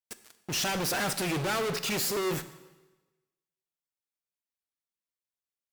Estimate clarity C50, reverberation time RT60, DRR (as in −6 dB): 13.5 dB, 1.2 s, 11.0 dB